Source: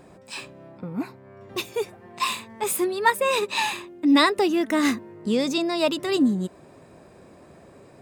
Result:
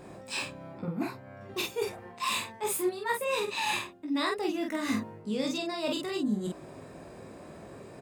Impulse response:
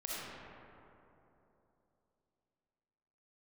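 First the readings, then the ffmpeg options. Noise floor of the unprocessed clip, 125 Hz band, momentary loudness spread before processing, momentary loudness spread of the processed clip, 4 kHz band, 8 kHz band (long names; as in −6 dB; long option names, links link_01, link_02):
−50 dBFS, −4.0 dB, 16 LU, 17 LU, −7.0 dB, −5.0 dB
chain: -af "areverse,acompressor=threshold=-30dB:ratio=12,areverse,aecho=1:1:19|47:0.596|0.708"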